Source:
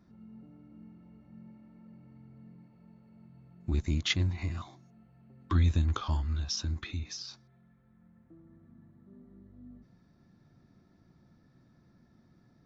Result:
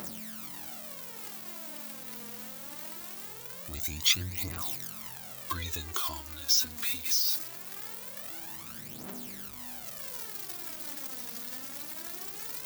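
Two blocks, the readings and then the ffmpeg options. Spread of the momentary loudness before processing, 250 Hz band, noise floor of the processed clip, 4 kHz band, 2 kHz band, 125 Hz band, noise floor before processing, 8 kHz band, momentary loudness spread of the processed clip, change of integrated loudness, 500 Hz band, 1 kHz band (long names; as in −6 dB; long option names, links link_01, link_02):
15 LU, −6.0 dB, −44 dBFS, +8.0 dB, +3.0 dB, −13.0 dB, −64 dBFS, can't be measured, 14 LU, −1.0 dB, +1.0 dB, +3.0 dB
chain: -af "aeval=exprs='val(0)+0.5*0.0133*sgn(val(0))':channel_layout=same,aemphasis=mode=production:type=riaa,aphaser=in_gain=1:out_gain=1:delay=4.3:decay=0.63:speed=0.22:type=triangular,volume=-3.5dB"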